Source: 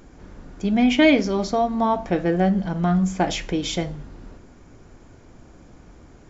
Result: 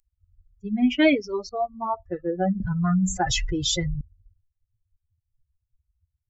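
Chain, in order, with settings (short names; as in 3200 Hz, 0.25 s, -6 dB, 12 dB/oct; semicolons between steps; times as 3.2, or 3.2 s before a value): per-bin expansion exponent 3; 1.49–1.94 air absorption 380 m; 2.6–4.01 fast leveller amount 70%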